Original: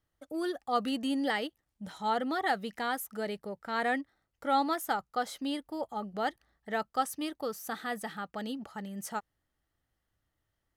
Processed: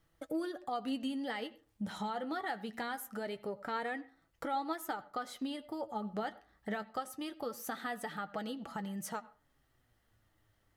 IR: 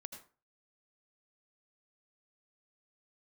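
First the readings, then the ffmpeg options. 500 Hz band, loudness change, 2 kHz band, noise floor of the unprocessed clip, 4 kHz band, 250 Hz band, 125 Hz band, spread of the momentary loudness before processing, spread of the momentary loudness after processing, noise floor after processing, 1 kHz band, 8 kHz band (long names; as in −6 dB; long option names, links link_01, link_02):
−5.5 dB, −6.0 dB, −6.5 dB, −83 dBFS, −6.5 dB, −4.5 dB, can't be measured, 10 LU, 6 LU, −75 dBFS, −7.0 dB, −5.0 dB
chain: -filter_complex "[0:a]acompressor=threshold=-47dB:ratio=4,flanger=delay=6:depth=3.8:regen=51:speed=0.23:shape=sinusoidal,asplit=2[link_01][link_02];[1:a]atrim=start_sample=2205,lowpass=4500[link_03];[link_02][link_03]afir=irnorm=-1:irlink=0,volume=-5.5dB[link_04];[link_01][link_04]amix=inputs=2:normalize=0,volume=10.5dB"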